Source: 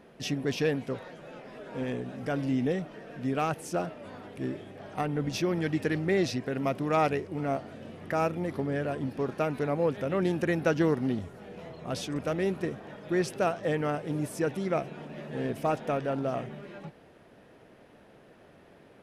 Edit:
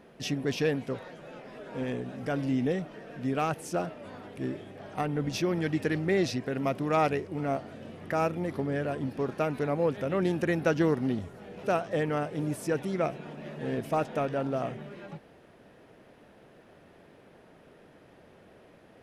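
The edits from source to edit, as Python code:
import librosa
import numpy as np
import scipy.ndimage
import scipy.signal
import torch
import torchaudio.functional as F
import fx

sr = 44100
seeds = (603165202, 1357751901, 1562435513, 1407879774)

y = fx.edit(x, sr, fx.cut(start_s=11.63, length_s=1.72), tone=tone)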